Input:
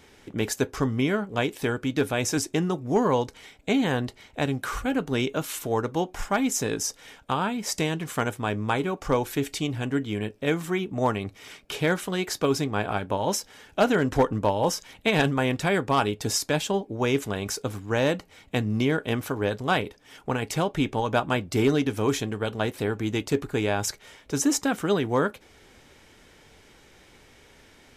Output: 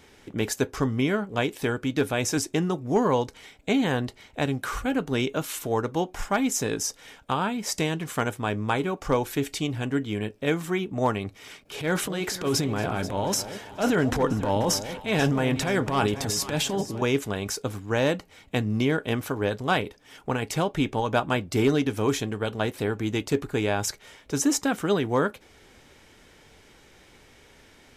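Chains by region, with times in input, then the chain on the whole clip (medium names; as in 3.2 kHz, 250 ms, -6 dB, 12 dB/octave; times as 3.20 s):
11.61–17.02 s: transient shaper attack -10 dB, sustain +7 dB + echo whose repeats swap between lows and highs 243 ms, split 830 Hz, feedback 62%, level -10.5 dB
whole clip: none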